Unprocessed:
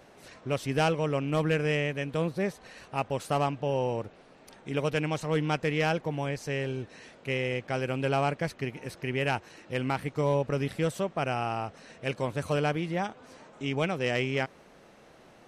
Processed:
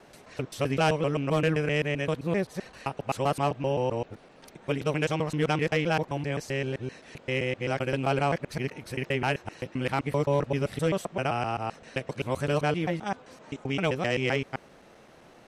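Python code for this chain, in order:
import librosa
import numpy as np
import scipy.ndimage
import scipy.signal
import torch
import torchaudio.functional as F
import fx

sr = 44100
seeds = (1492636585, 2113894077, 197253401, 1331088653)

y = fx.local_reverse(x, sr, ms=130.0)
y = F.gain(torch.from_numpy(y), 1.5).numpy()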